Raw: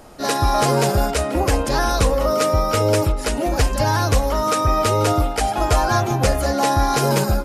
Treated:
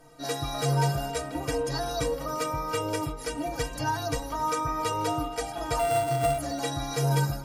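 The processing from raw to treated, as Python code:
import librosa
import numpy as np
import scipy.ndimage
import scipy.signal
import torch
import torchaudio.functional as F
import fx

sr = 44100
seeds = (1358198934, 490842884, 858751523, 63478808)

y = fx.sample_sort(x, sr, block=64, at=(5.79, 6.38))
y = fx.stiff_resonator(y, sr, f0_hz=140.0, decay_s=0.23, stiffness=0.03)
y = y + 10.0 ** (-19.5 / 20.0) * np.pad(y, (int(273 * sr / 1000.0), 0))[:len(y)]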